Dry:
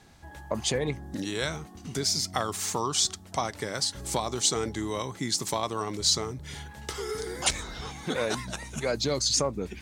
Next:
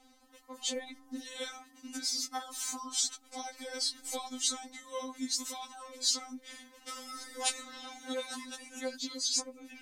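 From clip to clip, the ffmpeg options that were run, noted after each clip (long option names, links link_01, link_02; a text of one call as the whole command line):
ffmpeg -i in.wav -filter_complex "[0:a]acrossover=split=120|3000[link_01][link_02][link_03];[link_02]acompressor=threshold=-32dB:ratio=6[link_04];[link_01][link_04][link_03]amix=inputs=3:normalize=0,afftfilt=real='re*3.46*eq(mod(b,12),0)':imag='im*3.46*eq(mod(b,12),0)':win_size=2048:overlap=0.75,volume=-3dB" out.wav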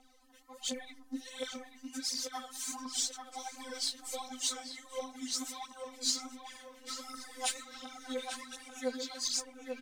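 ffmpeg -i in.wav -filter_complex "[0:a]aphaser=in_gain=1:out_gain=1:delay=4.6:decay=0.67:speed=1.4:type=triangular,asplit=2[link_01][link_02];[link_02]adelay=840,lowpass=frequency=2600:poles=1,volume=-5.5dB,asplit=2[link_03][link_04];[link_04]adelay=840,lowpass=frequency=2600:poles=1,volume=0.35,asplit=2[link_05][link_06];[link_06]adelay=840,lowpass=frequency=2600:poles=1,volume=0.35,asplit=2[link_07][link_08];[link_08]adelay=840,lowpass=frequency=2600:poles=1,volume=0.35[link_09];[link_01][link_03][link_05][link_07][link_09]amix=inputs=5:normalize=0,volume=-5dB" out.wav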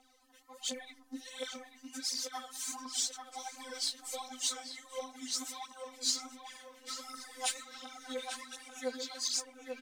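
ffmpeg -i in.wav -af "lowshelf=frequency=200:gain=-11" out.wav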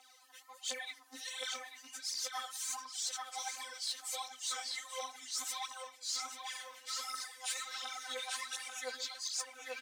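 ffmpeg -i in.wav -af "highpass=900,areverse,acompressor=threshold=-44dB:ratio=8,areverse,volume=7.5dB" out.wav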